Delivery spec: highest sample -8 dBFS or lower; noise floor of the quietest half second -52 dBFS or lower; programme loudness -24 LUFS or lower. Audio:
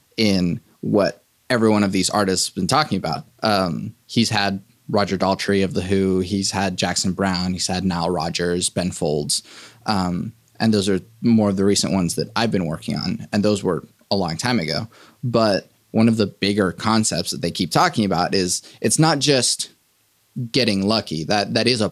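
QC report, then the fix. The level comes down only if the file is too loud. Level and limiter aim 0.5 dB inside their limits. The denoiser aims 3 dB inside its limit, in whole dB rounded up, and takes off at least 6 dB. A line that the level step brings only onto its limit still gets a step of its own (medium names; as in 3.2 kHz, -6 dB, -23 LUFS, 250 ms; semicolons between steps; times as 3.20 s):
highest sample -3.5 dBFS: fail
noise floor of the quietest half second -62 dBFS: pass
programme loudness -20.0 LUFS: fail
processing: trim -4.5 dB; peak limiter -8.5 dBFS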